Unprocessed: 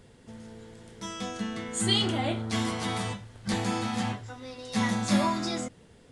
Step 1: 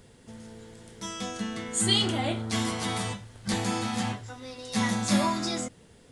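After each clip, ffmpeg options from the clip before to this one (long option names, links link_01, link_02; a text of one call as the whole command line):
ffmpeg -i in.wav -af "highshelf=frequency=5600:gain=6.5" out.wav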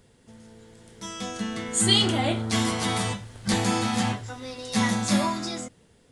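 ffmpeg -i in.wav -af "dynaudnorm=framelen=220:gausssize=11:maxgain=9dB,volume=-4dB" out.wav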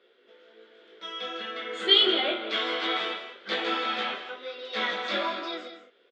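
ffmpeg -i in.wav -filter_complex "[0:a]flanger=delay=16.5:depth=3.8:speed=1.3,highpass=frequency=370:width=0.5412,highpass=frequency=370:width=1.3066,equalizer=frequency=380:width_type=q:width=4:gain=8,equalizer=frequency=550:width_type=q:width=4:gain=4,equalizer=frequency=880:width_type=q:width=4:gain=-8,equalizer=frequency=1400:width_type=q:width=4:gain=8,equalizer=frequency=2300:width_type=q:width=4:gain=4,equalizer=frequency=3400:width_type=q:width=4:gain=9,lowpass=frequency=3700:width=0.5412,lowpass=frequency=3700:width=1.3066,asplit=2[link_01][link_02];[link_02]aecho=0:1:165|204:0.237|0.211[link_03];[link_01][link_03]amix=inputs=2:normalize=0" out.wav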